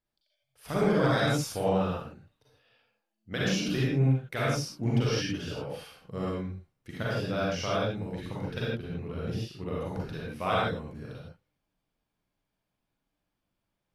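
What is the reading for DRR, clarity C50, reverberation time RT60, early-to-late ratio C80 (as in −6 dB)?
−7.0 dB, −3.5 dB, non-exponential decay, 0.5 dB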